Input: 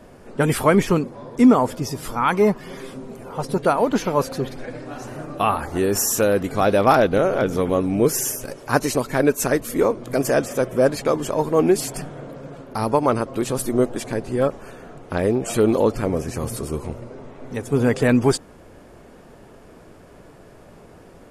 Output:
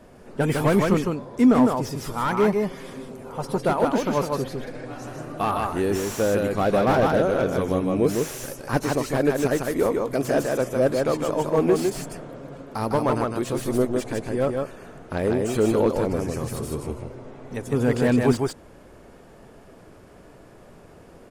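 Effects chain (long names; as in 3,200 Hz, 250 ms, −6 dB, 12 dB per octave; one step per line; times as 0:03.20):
single-tap delay 155 ms −4 dB
slew-rate limiting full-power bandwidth 180 Hz
level −3.5 dB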